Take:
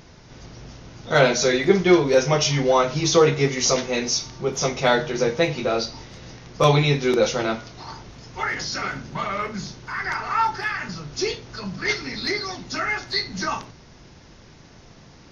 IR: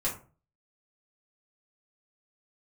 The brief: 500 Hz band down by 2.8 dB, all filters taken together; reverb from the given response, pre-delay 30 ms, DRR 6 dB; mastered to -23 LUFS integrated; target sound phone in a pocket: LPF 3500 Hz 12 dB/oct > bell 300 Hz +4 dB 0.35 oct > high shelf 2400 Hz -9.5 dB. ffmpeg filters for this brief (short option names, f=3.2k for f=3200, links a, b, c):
-filter_complex "[0:a]equalizer=f=500:t=o:g=-3.5,asplit=2[a][b];[1:a]atrim=start_sample=2205,adelay=30[c];[b][c]afir=irnorm=-1:irlink=0,volume=-12dB[d];[a][d]amix=inputs=2:normalize=0,lowpass=3.5k,equalizer=f=300:t=o:w=0.35:g=4,highshelf=f=2.4k:g=-9.5,volume=0.5dB"